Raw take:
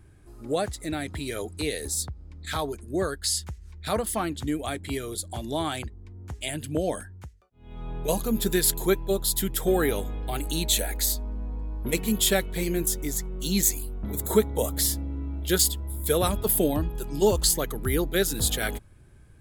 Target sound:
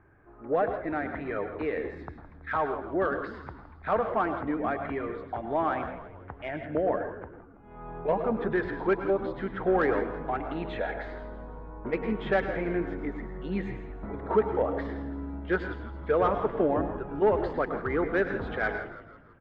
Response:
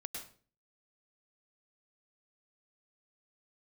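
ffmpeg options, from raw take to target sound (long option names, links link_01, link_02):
-filter_complex "[0:a]lowpass=frequency=1800:width=0.5412,lowpass=frequency=1800:width=1.3066,tiltshelf=frequency=640:gain=-4,asplit=2[link_01][link_02];[link_02]highpass=frequency=720:poles=1,volume=15dB,asoftclip=type=tanh:threshold=-9.5dB[link_03];[link_01][link_03]amix=inputs=2:normalize=0,lowpass=frequency=1100:poles=1,volume=-6dB,asplit=6[link_04][link_05][link_06][link_07][link_08][link_09];[link_05]adelay=164,afreqshift=-72,volume=-13dB[link_10];[link_06]adelay=328,afreqshift=-144,volume=-19dB[link_11];[link_07]adelay=492,afreqshift=-216,volume=-25dB[link_12];[link_08]adelay=656,afreqshift=-288,volume=-31.1dB[link_13];[link_09]adelay=820,afreqshift=-360,volume=-37.1dB[link_14];[link_04][link_10][link_11][link_12][link_13][link_14]amix=inputs=6:normalize=0,asplit=2[link_15][link_16];[1:a]atrim=start_sample=2205[link_17];[link_16][link_17]afir=irnorm=-1:irlink=0,volume=1.5dB[link_18];[link_15][link_18]amix=inputs=2:normalize=0,volume=-7dB"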